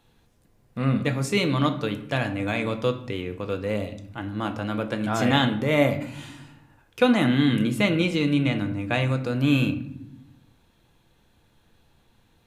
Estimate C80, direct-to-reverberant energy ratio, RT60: 15.0 dB, 6.0 dB, 0.80 s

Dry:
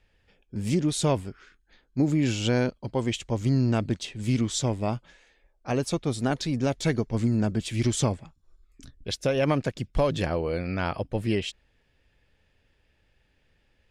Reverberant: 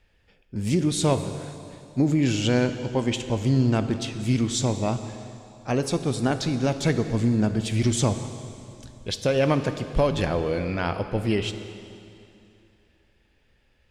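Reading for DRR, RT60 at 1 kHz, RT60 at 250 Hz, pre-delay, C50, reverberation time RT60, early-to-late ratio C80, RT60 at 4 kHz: 8.5 dB, 2.7 s, 2.7 s, 6 ms, 10.0 dB, 2.7 s, 10.5 dB, 2.5 s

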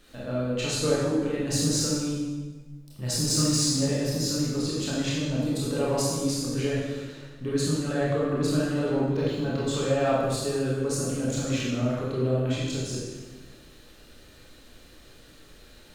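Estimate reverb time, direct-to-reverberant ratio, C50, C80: 1.3 s, −6.5 dB, −1.5 dB, 1.5 dB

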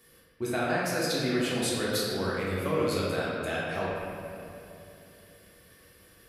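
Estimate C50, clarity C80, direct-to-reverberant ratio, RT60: −2.5 dB, −0.5 dB, −7.0 dB, 2.8 s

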